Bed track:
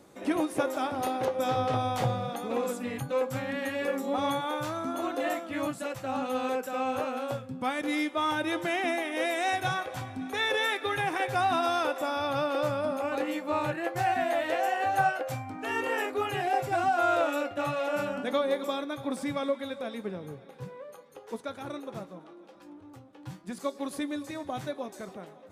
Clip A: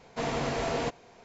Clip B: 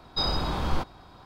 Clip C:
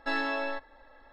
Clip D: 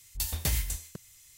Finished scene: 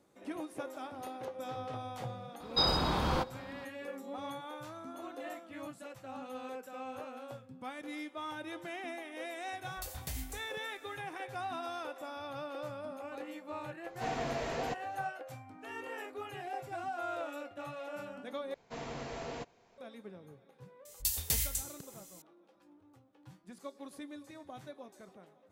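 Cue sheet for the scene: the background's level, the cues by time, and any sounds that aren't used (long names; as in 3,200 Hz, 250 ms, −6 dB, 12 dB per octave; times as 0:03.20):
bed track −13 dB
0:02.40: mix in B −0.5 dB + high-pass filter 100 Hz 6 dB per octave
0:09.62: mix in D −12 dB
0:13.84: mix in A −7.5 dB
0:18.54: overwrite with A −11.5 dB
0:20.85: mix in D −9 dB + high-shelf EQ 2,800 Hz +10.5 dB
not used: C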